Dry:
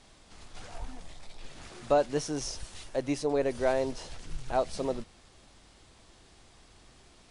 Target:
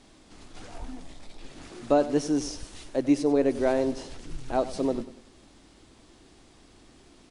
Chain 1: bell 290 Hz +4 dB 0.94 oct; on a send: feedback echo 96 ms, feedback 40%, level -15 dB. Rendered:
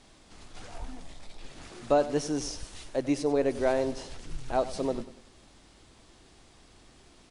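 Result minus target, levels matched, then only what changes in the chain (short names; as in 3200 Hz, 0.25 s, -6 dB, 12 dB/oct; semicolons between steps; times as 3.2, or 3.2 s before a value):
250 Hz band -2.5 dB
change: bell 290 Hz +10 dB 0.94 oct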